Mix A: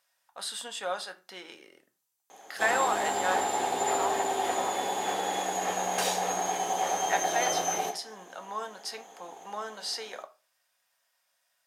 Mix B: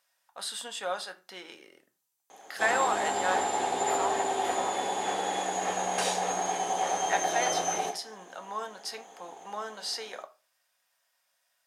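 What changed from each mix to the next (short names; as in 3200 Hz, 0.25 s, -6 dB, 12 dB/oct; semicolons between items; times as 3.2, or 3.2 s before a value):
background: add Chebyshev low-pass 10000 Hz, order 3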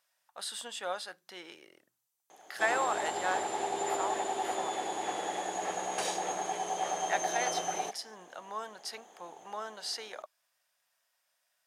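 reverb: off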